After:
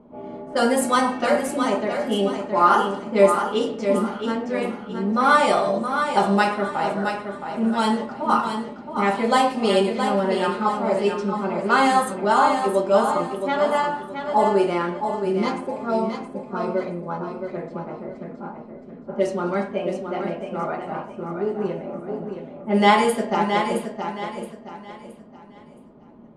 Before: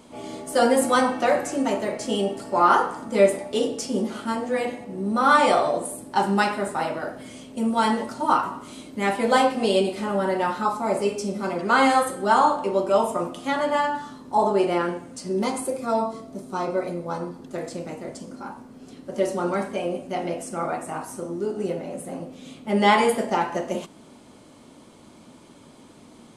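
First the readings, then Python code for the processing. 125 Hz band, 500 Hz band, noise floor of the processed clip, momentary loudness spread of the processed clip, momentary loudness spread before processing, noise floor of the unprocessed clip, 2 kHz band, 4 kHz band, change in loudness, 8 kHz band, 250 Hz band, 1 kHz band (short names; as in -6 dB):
+3.0 dB, +1.5 dB, -44 dBFS, 15 LU, 15 LU, -49 dBFS, +1.0 dB, +1.5 dB, +1.5 dB, -2.0 dB, +2.0 dB, +1.5 dB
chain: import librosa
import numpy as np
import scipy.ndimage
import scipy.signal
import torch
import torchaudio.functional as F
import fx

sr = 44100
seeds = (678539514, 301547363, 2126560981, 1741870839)

p1 = fx.env_lowpass(x, sr, base_hz=770.0, full_db=-16.0)
p2 = p1 + 0.35 * np.pad(p1, (int(4.9 * sr / 1000.0), 0))[:len(p1)]
y = p2 + fx.echo_feedback(p2, sr, ms=670, feedback_pct=33, wet_db=-7.0, dry=0)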